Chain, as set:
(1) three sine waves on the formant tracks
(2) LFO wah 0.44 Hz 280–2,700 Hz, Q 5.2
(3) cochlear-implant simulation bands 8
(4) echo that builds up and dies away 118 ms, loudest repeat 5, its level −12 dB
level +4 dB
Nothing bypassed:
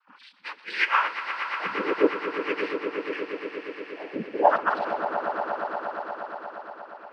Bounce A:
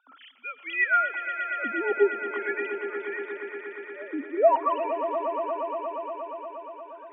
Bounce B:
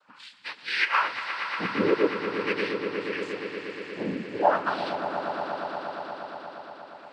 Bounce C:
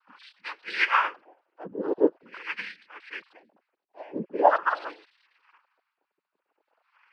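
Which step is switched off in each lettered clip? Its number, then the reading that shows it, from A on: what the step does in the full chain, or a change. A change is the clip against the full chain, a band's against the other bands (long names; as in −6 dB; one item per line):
3, 250 Hz band −4.0 dB
1, 125 Hz band +9.0 dB
4, echo-to-direct ratio −2.5 dB to none audible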